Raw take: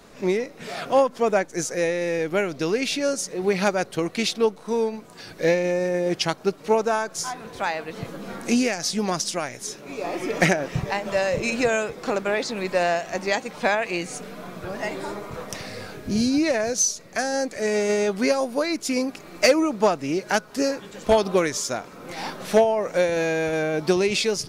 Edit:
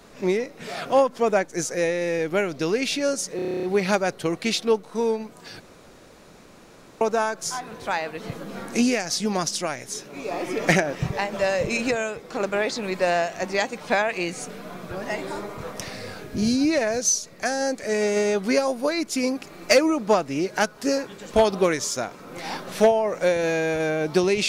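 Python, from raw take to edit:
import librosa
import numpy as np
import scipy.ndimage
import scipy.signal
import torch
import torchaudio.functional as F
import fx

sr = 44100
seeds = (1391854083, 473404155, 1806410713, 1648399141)

y = fx.edit(x, sr, fx.stutter(start_s=3.36, slice_s=0.03, count=10),
    fx.room_tone_fill(start_s=5.33, length_s=1.41),
    fx.clip_gain(start_s=11.64, length_s=0.49, db=-4.0), tone=tone)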